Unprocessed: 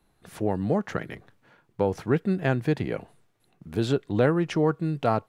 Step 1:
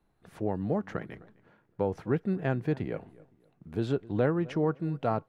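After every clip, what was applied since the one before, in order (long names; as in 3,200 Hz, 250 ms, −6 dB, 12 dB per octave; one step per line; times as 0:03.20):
high-shelf EQ 3,000 Hz −10.5 dB
feedback echo with a low-pass in the loop 257 ms, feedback 30%, low-pass 2,000 Hz, level −20.5 dB
level −4.5 dB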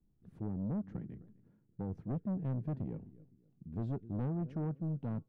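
drawn EQ curve 230 Hz 0 dB, 700 Hz −20 dB, 2,000 Hz −24 dB
soft clipping −31.5 dBFS, distortion −11 dB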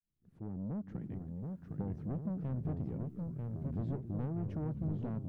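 fade in at the beginning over 1.46 s
downward compressor, threshold −43 dBFS, peak gain reduction 9 dB
delay with pitch and tempo change per echo 642 ms, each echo −2 semitones, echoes 3
level +6.5 dB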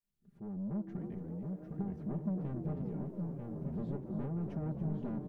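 comb filter 5 ms, depth 82%
echo with shifted repeats 286 ms, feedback 46%, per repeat +140 Hz, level −12 dB
level −2.5 dB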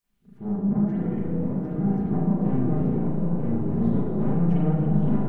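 in parallel at −1 dB: brickwall limiter −36.5 dBFS, peak gain reduction 10.5 dB
on the sum: notch filter 570 Hz, Q 16
spring reverb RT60 1.1 s, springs 35/39 ms, chirp 45 ms, DRR −8 dB
level +2.5 dB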